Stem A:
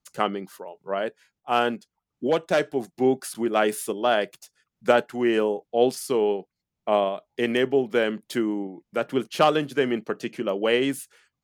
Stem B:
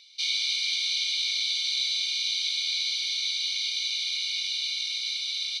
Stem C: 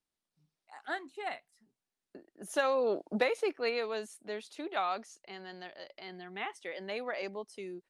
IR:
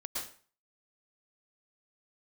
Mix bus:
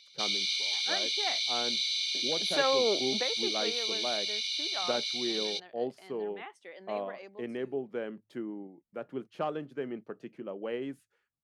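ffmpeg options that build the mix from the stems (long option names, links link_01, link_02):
-filter_complex "[0:a]lowpass=frequency=1100:poles=1,volume=-12.5dB[link_01];[1:a]volume=-3.5dB[link_02];[2:a]highpass=150,highshelf=frequency=4400:gain=-5,dynaudnorm=framelen=130:gausssize=13:maxgain=6.5dB,volume=-4.5dB,afade=type=out:start_time=2.95:duration=0.25:silence=0.398107[link_03];[link_01][link_02][link_03]amix=inputs=3:normalize=0,bandreject=frequency=53.69:width_type=h:width=4,bandreject=frequency=107.38:width_type=h:width=4"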